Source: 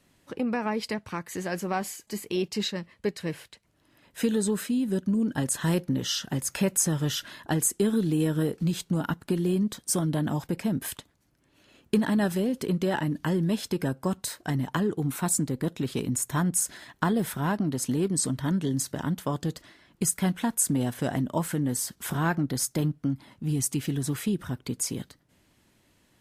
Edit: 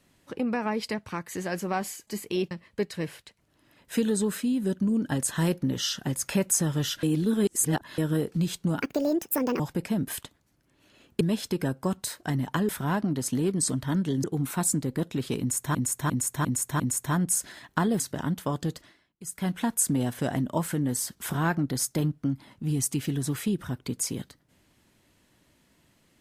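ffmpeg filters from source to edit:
-filter_complex "[0:a]asplit=16[a][b][c][d][e][f][g][h][i][j][k][l][m][n][o][p];[a]atrim=end=2.512[q];[b]atrim=start=2.768:end=7.292[r];[c]atrim=start=7.288:end=8.242,asetpts=PTS-STARTPTS,areverse[s];[d]atrim=start=8.238:end=9.084[t];[e]atrim=start=9.08:end=10.34,asetpts=PTS-STARTPTS,asetrate=71442,aresample=44100[u];[f]atrim=start=10.336:end=11.952[v];[g]atrim=start=13.408:end=14.892[w];[h]atrim=start=17.248:end=18.802[x];[i]atrim=start=14.888:end=16.402[y];[j]atrim=start=16.048:end=16.402[z];[k]atrim=start=16.048:end=16.402[aa];[l]atrim=start=16.048:end=16.402[ab];[m]atrim=start=16.048:end=17.252[ac];[n]atrim=start=18.798:end=19.93,asetpts=PTS-STARTPTS,afade=t=out:st=0.742:d=0.39:silence=0.0668344[ad];[o]atrim=start=19.93:end=20,asetpts=PTS-STARTPTS,volume=-23.5dB[ae];[p]atrim=start=20,asetpts=PTS-STARTPTS,afade=t=in:d=0.39:silence=0.0668344[af];[q][r]acrossfade=d=0.004:c1=hsin:c2=hsin[ag];[ag][s]acrossfade=d=0.004:c1=hsin:c2=hsin[ah];[ah][t]acrossfade=d=0.004:c1=hsin:c2=hsin[ai];[ai][u]acrossfade=d=0.004:c1=hsin:c2=hsin[aj];[aj][v]acrossfade=d=0.004:c1=hsin:c2=hsin[ak];[ak][w]acrossfade=d=0.004:c1=hsin:c2=hsin[al];[al][x]acrossfade=d=0.004:c1=hsin:c2=hsin[am];[am][y]acrossfade=d=0.004:c1=hsin:c2=hsin[an];[an][z]acrossfade=d=0.004:c1=hsin:c2=hsin[ao];[ao][aa]acrossfade=d=0.004:c1=hsin:c2=hsin[ap];[ap][ab]acrossfade=d=0.004:c1=hsin:c2=hsin[aq];[aq][ac]acrossfade=d=0.004:c1=hsin:c2=hsin[ar];[ad][ae][af]concat=n=3:v=0:a=1[as];[ar][as]acrossfade=d=0.004:c1=hsin:c2=hsin"

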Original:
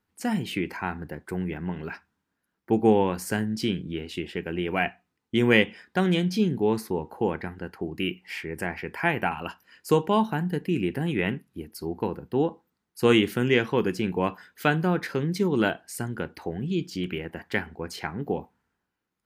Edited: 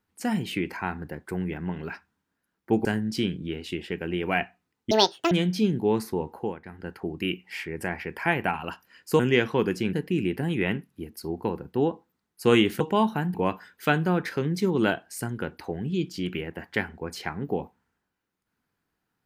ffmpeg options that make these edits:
-filter_complex "[0:a]asplit=10[a][b][c][d][e][f][g][h][i][j];[a]atrim=end=2.852[k];[b]atrim=start=3.298:end=5.364[l];[c]atrim=start=5.36:end=6.09,asetpts=PTS-STARTPTS,asetrate=79821,aresample=44100,atrim=end_sample=17786,asetpts=PTS-STARTPTS[m];[d]atrim=start=6.086:end=7.36,asetpts=PTS-STARTPTS,afade=t=out:st=1.014:d=0.26:silence=0.223872[n];[e]atrim=start=7.36:end=7.41,asetpts=PTS-STARTPTS,volume=-13dB[o];[f]atrim=start=7.41:end=9.972,asetpts=PTS-STARTPTS,afade=t=in:d=0.26:silence=0.223872[p];[g]atrim=start=13.378:end=14.122[q];[h]atrim=start=10.508:end=13.382[r];[i]atrim=start=9.968:end=10.512[s];[j]atrim=start=14.118[t];[k][l]acrossfade=d=0.004:c1=hsin:c2=hsin[u];[u][m]acrossfade=d=0.004:c1=hsin:c2=hsin[v];[n][o][p]concat=n=3:v=0:a=1[w];[v][w]acrossfade=d=0.004:c1=hsin:c2=hsin[x];[x][q]acrossfade=d=0.004:c1=hsin:c2=hsin[y];[y][r]acrossfade=d=0.004:c1=hsin:c2=hsin[z];[z][s]acrossfade=d=0.004:c1=hsin:c2=hsin[aa];[aa][t]acrossfade=d=0.004:c1=hsin:c2=hsin"

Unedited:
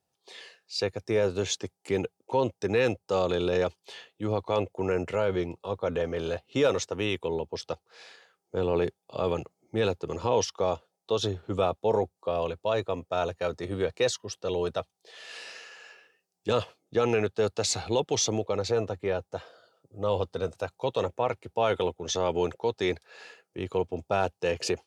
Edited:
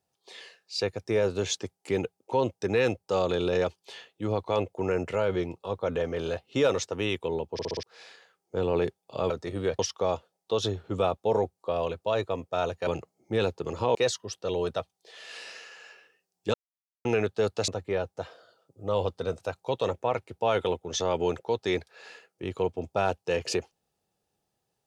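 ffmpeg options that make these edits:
-filter_complex "[0:a]asplit=13[a][b][c][d][e][f][g][h][i][j][k][l][m];[a]atrim=end=7.592[n];[b]atrim=start=7.528:end=7.592[o];[c]atrim=start=7.528:end=7.592[p];[d]atrim=start=7.528:end=7.592[q];[e]atrim=start=7.528:end=7.592[r];[f]atrim=start=7.828:end=9.302[s];[g]atrim=start=13.458:end=13.952[t];[h]atrim=start=10.378:end=13.462[u];[i]atrim=start=9.298:end=10.382[v];[j]atrim=start=13.948:end=16.54,asetpts=PTS-STARTPTS,afade=t=out:st=2.588:d=0.004:c=hsin[w];[k]atrim=start=16.54:end=17.05,asetpts=PTS-STARTPTS,volume=0[x];[l]atrim=start=17.05:end=17.682,asetpts=PTS-STARTPTS,afade=t=in:d=0.004:c=hsin[y];[m]atrim=start=18.828[z];[n][o]acrossfade=d=0.004:c1=hsin:c2=hsin[aa];[aa][p]acrossfade=d=0.004:c1=hsin:c2=hsin[ab];[ab][q]acrossfade=d=0.004:c1=hsin:c2=hsin[ac];[ac][r]acrossfade=d=0.004:c1=hsin:c2=hsin[ad];[ad][s]acrossfade=d=0.004:c1=hsin:c2=hsin[ae];[ae][t]acrossfade=d=0.004:c1=hsin:c2=hsin[af];[af][u]acrossfade=d=0.004:c1=hsin:c2=hsin[ag];[ag][v]acrossfade=d=0.004:c1=hsin:c2=hsin[ah];[w][x][y]concat=n=3:v=0:a=1[ai];[ah][ai]acrossfade=d=0.004:c1=hsin:c2=hsin[aj];[aj][z]acrossfade=d=0.004:c1=hsin:c2=hsin"

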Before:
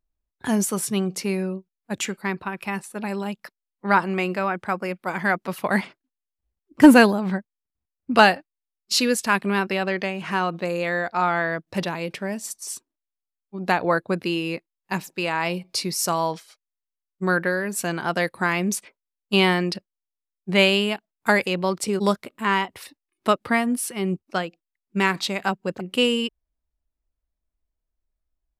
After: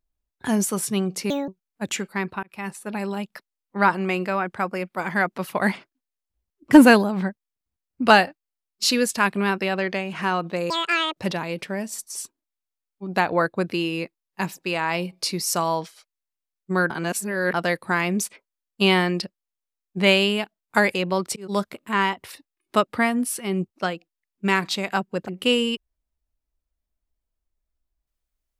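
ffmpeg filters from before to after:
-filter_complex "[0:a]asplit=9[a][b][c][d][e][f][g][h][i];[a]atrim=end=1.304[j];[b]atrim=start=1.3:end=1.57,asetpts=PTS-STARTPTS,asetrate=66150,aresample=44100[k];[c]atrim=start=1.566:end=2.52,asetpts=PTS-STARTPTS,afade=t=out:st=0.95:d=0.004:c=hsin[l];[d]atrim=start=2.52:end=10.794,asetpts=PTS-STARTPTS,afade=t=in:d=0.31[m];[e]atrim=start=10.79:end=11.69,asetpts=PTS-STARTPTS,asetrate=84231,aresample=44100,atrim=end_sample=20780,asetpts=PTS-STARTPTS[n];[f]atrim=start=11.686:end=17.422[o];[g]atrim=start=17.418:end=18.062,asetpts=PTS-STARTPTS,areverse[p];[h]atrim=start=18.058:end=21.88,asetpts=PTS-STARTPTS,afade=t=out:st=3.818:d=0.004:c=hsin[q];[i]atrim=start=21.88,asetpts=PTS-STARTPTS,afade=t=in:d=0.3[r];[j][k]acrossfade=d=0.004:c1=hsin:c2=hsin[s];[l][m]concat=n=2:v=0:a=1[t];[s][t]acrossfade=d=0.004:c1=hsin:c2=hsin[u];[u][n]acrossfade=d=0.004:c1=hsin:c2=hsin[v];[v][o]acrossfade=d=0.004:c1=hsin:c2=hsin[w];[w][p]acrossfade=d=0.004:c1=hsin:c2=hsin[x];[q][r]concat=n=2:v=0:a=1[y];[x][y]acrossfade=d=0.004:c1=hsin:c2=hsin"

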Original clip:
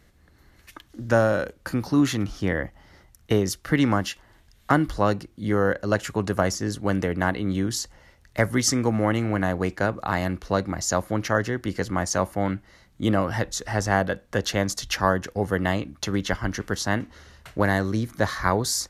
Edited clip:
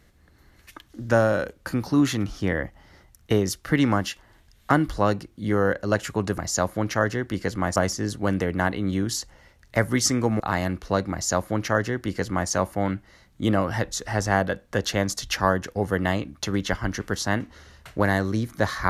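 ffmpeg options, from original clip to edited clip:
-filter_complex "[0:a]asplit=4[a][b][c][d];[a]atrim=end=6.382[e];[b]atrim=start=10.718:end=12.102[f];[c]atrim=start=6.378:end=9.022[g];[d]atrim=start=9.998[h];[e][f]acrossfade=d=0.004:c1=hsin:c2=hsin[i];[i][g]acrossfade=d=0.004:c1=hsin:c2=hsin[j];[j][h]acrossfade=d=0.004:c1=hsin:c2=hsin"

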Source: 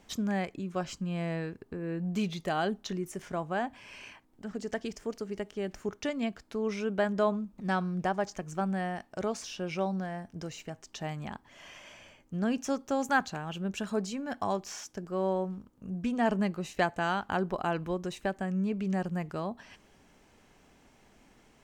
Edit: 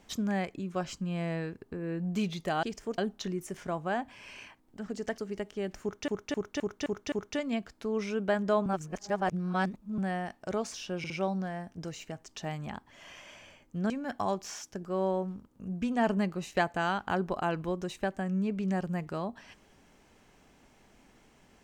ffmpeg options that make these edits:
-filter_complex "[0:a]asplit=14[a][b][c][d][e][f][g][h][i][j][k][l][m][n];[a]atrim=end=2.632[o];[b]atrim=start=4.818:end=5.172[p];[c]atrim=start=2.628:end=4.822[q];[d]atrim=start=5.168:end=6.082[r];[e]atrim=start=5.818:end=6.082[s];[f]atrim=start=5.818:end=6.082[t];[g]atrim=start=5.818:end=6.082[u];[h]atrim=start=5.818:end=6.082[v];[i]atrim=start=5.818:end=7.362[w];[j]atrim=start=7.358:end=8.682,asetpts=PTS-STARTPTS,areverse[x];[k]atrim=start=8.678:end=9.742[y];[l]atrim=start=9.678:end=9.742[z];[m]atrim=start=9.678:end=12.482[aa];[n]atrim=start=14.118[ab];[o][p]acrossfade=d=0.004:c1=hsin:c2=hsin[ac];[ac][q]acrossfade=d=0.004:c1=hsin:c2=hsin[ad];[ad][r]acrossfade=d=0.004:c1=hsin:c2=hsin[ae];[ae][s]acrossfade=d=0.004:c1=hsin:c2=hsin[af];[af][t]acrossfade=d=0.004:c1=hsin:c2=hsin[ag];[ag][u]acrossfade=d=0.004:c1=hsin:c2=hsin[ah];[ah][v]acrossfade=d=0.004:c1=hsin:c2=hsin[ai];[ai][w]acrossfade=d=0.004:c1=hsin:c2=hsin[aj];[aj][x]acrossfade=d=0.004:c1=hsin:c2=hsin[ak];[ak][y]acrossfade=d=0.004:c1=hsin:c2=hsin[al];[al][z]acrossfade=d=0.004:c1=hsin:c2=hsin[am];[am][aa]acrossfade=d=0.004:c1=hsin:c2=hsin[an];[an][ab]acrossfade=d=0.004:c1=hsin:c2=hsin"

